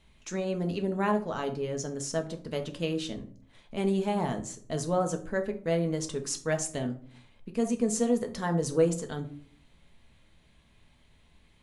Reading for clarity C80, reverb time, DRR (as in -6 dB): 17.5 dB, 0.50 s, 4.5 dB